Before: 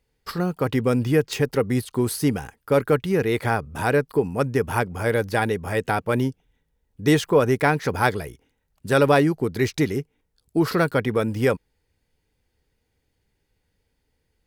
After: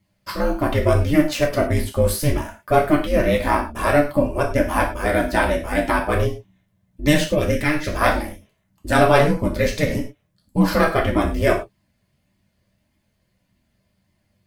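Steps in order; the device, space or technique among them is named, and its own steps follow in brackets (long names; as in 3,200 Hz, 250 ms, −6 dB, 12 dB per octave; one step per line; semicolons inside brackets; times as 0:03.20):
0:07.20–0:07.93: flat-topped bell 820 Hz −14 dB
alien voice (ring modulation 150 Hz; flanger 1.7 Hz, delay 0.9 ms, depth 1 ms, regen −38%)
reverb whose tail is shaped and stops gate 140 ms falling, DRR −0.5 dB
level +7.5 dB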